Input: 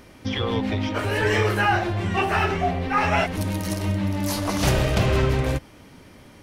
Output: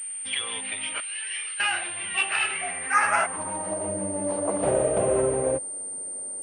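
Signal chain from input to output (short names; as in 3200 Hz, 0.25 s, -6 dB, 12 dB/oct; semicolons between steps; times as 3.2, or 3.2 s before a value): band-pass sweep 2800 Hz -> 530 Hz, 2.49–3.98; 1–1.6 differentiator; pulse-width modulation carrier 8900 Hz; gain +6 dB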